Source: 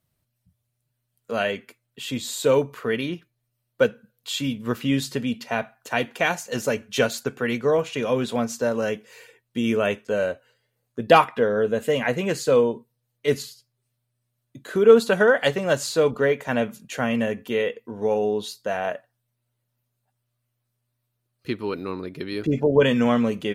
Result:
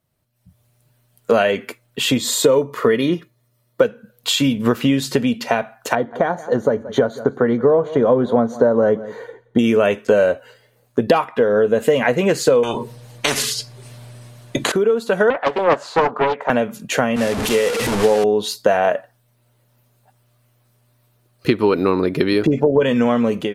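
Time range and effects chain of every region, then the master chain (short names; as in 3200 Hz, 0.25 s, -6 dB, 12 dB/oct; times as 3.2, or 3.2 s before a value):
2.18–3.82 notch 2700 Hz, Q 10 + notch comb 770 Hz
5.95–9.59 running mean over 17 samples + echo 0.174 s -23 dB
12.63–14.72 LPF 8900 Hz + notch 1300 Hz, Q 21 + spectral compressor 4:1
15.3–16.5 band-pass 940 Hz, Q 1.7 + Doppler distortion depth 0.74 ms
17.16–18.24 delta modulation 64 kbps, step -22.5 dBFS + three-band expander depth 100%
whole clip: compressor 12:1, threshold -30 dBFS; bell 590 Hz +5.5 dB 2.8 oct; AGC gain up to 16 dB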